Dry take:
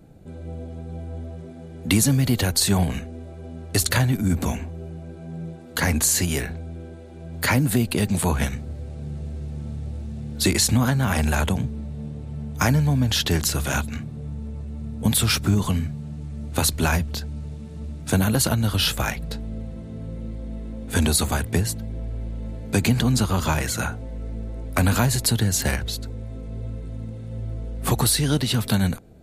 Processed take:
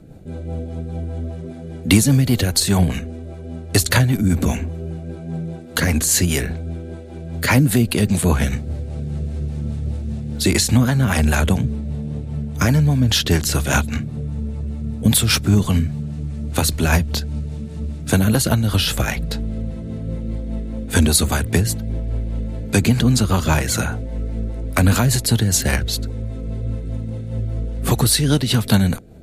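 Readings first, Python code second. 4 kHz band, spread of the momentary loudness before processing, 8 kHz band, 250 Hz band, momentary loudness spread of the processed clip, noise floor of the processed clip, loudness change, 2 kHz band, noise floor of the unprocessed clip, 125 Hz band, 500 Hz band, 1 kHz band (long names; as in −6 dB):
+3.5 dB, 16 LU, +3.0 dB, +5.0 dB, 13 LU, −32 dBFS, +4.0 dB, +4.0 dB, −38 dBFS, +5.0 dB, +4.5 dB, +2.5 dB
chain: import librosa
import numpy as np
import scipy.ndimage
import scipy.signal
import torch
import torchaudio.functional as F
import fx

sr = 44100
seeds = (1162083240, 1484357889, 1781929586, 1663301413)

p1 = fx.rider(x, sr, range_db=3, speed_s=0.5)
p2 = x + (p1 * 10.0 ** (-1.5 / 20.0))
p3 = fx.rotary(p2, sr, hz=5.0)
y = p3 * 10.0 ** (1.5 / 20.0)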